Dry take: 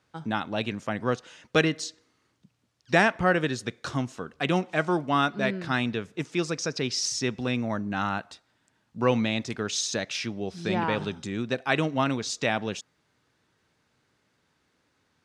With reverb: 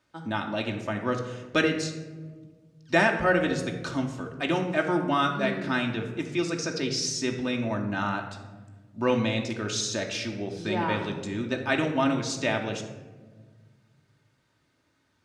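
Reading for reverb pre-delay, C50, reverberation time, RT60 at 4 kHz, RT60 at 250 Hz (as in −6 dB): 3 ms, 7.5 dB, 1.4 s, 0.65 s, 2.3 s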